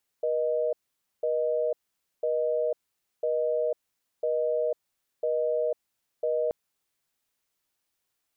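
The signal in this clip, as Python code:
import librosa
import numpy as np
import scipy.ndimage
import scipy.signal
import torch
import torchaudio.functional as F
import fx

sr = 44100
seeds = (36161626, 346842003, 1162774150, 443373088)

y = fx.call_progress(sr, length_s=6.28, kind='busy tone', level_db=-26.5)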